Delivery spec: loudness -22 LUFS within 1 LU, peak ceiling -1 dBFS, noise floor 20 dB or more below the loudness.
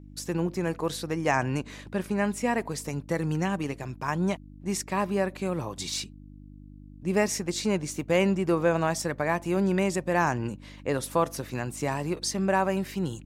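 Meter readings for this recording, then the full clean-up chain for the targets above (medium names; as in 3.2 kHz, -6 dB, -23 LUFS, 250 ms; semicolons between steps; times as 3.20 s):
hum 50 Hz; highest harmonic 300 Hz; hum level -46 dBFS; loudness -28.5 LUFS; peak level -11.5 dBFS; loudness target -22.0 LUFS
-> de-hum 50 Hz, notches 6; trim +6.5 dB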